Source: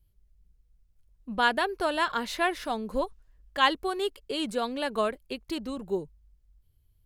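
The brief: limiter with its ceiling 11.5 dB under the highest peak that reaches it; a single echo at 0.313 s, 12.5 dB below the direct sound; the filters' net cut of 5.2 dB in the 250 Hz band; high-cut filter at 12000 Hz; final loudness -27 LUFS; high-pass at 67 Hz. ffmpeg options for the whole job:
-af "highpass=67,lowpass=12k,equalizer=f=250:t=o:g=-7,alimiter=limit=-19dB:level=0:latency=1,aecho=1:1:313:0.237,volume=6dB"

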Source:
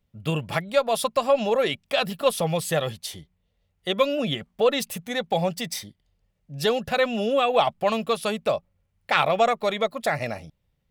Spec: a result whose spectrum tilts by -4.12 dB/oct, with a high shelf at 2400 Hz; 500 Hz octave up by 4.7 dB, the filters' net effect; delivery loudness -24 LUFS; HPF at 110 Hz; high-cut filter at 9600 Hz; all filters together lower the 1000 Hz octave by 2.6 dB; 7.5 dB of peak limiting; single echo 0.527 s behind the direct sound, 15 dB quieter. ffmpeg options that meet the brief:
-af "highpass=110,lowpass=9.6k,equalizer=f=500:t=o:g=7.5,equalizer=f=1k:t=o:g=-8.5,highshelf=f=2.4k:g=3.5,alimiter=limit=-11.5dB:level=0:latency=1,aecho=1:1:527:0.178,volume=-0.5dB"

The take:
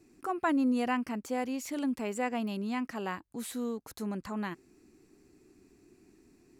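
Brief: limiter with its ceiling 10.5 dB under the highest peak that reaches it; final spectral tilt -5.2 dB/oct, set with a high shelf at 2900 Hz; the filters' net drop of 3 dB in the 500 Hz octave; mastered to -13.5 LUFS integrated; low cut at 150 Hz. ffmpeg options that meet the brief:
-af "highpass=150,equalizer=f=500:t=o:g=-3.5,highshelf=f=2.9k:g=-4.5,volume=24.5dB,alimiter=limit=-5dB:level=0:latency=1"

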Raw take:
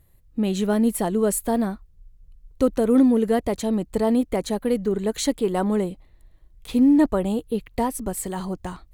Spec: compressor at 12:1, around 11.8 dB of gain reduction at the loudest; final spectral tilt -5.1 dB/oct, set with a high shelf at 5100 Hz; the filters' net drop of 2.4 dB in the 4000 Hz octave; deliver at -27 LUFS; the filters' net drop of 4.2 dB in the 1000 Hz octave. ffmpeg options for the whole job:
-af "equalizer=f=1k:t=o:g=-6,equalizer=f=4k:t=o:g=-4,highshelf=f=5.1k:g=3.5,acompressor=threshold=-25dB:ratio=12,volume=3.5dB"

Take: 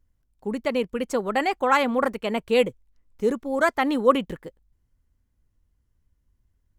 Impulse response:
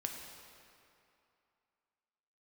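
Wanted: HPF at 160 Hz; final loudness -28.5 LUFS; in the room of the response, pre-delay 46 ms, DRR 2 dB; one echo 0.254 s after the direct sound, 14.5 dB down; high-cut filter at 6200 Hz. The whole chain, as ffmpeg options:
-filter_complex "[0:a]highpass=160,lowpass=6.2k,aecho=1:1:254:0.188,asplit=2[a][b];[1:a]atrim=start_sample=2205,adelay=46[c];[b][c]afir=irnorm=-1:irlink=0,volume=-2dB[d];[a][d]amix=inputs=2:normalize=0,volume=-6.5dB"

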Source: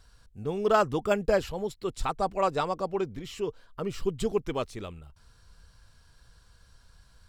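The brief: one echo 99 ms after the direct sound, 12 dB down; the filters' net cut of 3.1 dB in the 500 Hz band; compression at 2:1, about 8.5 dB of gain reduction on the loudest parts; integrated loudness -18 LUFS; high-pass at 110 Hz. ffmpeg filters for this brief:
-af "highpass=110,equalizer=f=500:t=o:g=-4,acompressor=threshold=-35dB:ratio=2,aecho=1:1:99:0.251,volume=19dB"

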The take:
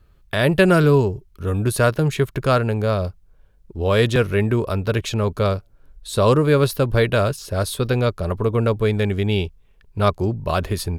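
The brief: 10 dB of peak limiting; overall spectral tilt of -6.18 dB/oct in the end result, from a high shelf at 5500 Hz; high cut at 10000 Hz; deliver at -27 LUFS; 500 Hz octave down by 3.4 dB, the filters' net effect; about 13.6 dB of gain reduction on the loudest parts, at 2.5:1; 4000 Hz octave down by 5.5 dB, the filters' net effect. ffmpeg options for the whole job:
-af "lowpass=10k,equalizer=f=500:t=o:g=-4,equalizer=f=4k:t=o:g=-5.5,highshelf=f=5.5k:g=-3.5,acompressor=threshold=-34dB:ratio=2.5,volume=10dB,alimiter=limit=-16.5dB:level=0:latency=1"

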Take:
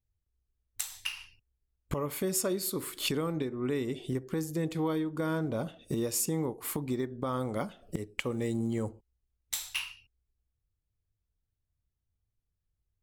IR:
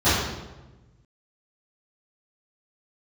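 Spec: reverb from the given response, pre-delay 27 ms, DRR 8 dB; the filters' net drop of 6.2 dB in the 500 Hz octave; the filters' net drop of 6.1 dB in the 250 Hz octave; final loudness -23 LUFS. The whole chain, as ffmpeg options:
-filter_complex "[0:a]equalizer=f=250:t=o:g=-6.5,equalizer=f=500:t=o:g=-5.5,asplit=2[a][b];[1:a]atrim=start_sample=2205,adelay=27[c];[b][c]afir=irnorm=-1:irlink=0,volume=-28.5dB[d];[a][d]amix=inputs=2:normalize=0,volume=12dB"

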